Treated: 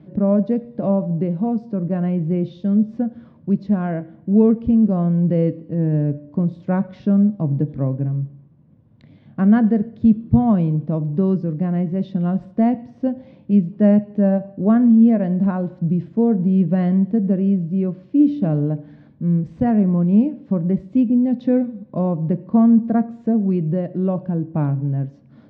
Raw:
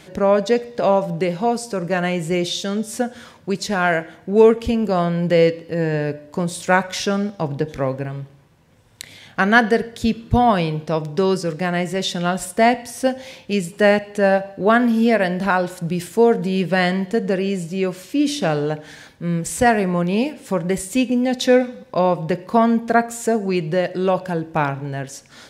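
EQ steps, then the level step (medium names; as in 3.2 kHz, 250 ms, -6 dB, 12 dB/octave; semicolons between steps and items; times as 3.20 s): cabinet simulation 140–4700 Hz, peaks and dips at 140 Hz +7 dB, 210 Hz +10 dB, 300 Hz +9 dB, 610 Hz +7 dB, 1.1 kHz +5 dB; tilt EQ -4.5 dB/octave; bass shelf 190 Hz +10 dB; -16.5 dB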